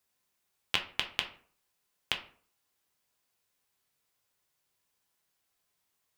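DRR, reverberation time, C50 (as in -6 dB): 2.5 dB, 0.50 s, 11.5 dB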